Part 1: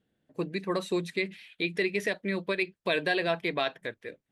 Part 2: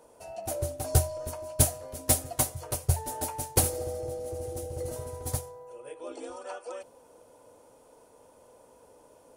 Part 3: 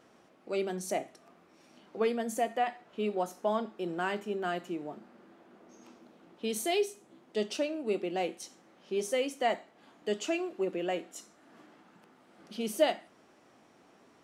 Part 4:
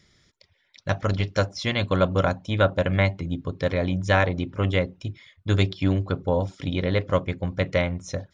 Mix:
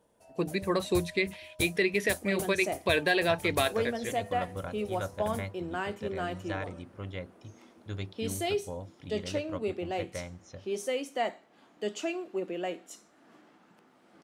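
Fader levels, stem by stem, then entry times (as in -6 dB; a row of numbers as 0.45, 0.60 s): +1.5, -13.5, -1.5, -16.5 dB; 0.00, 0.00, 1.75, 2.40 s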